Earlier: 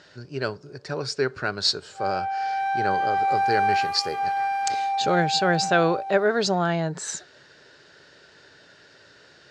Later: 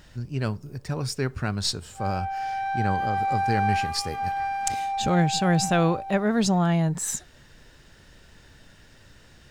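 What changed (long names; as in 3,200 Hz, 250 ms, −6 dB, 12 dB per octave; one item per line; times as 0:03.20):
speech: remove loudspeaker in its box 190–7,000 Hz, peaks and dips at 220 Hz −8 dB, 410 Hz +7 dB, 600 Hz +5 dB, 1,500 Hz +8 dB, 4,400 Hz +8 dB
background −3.0 dB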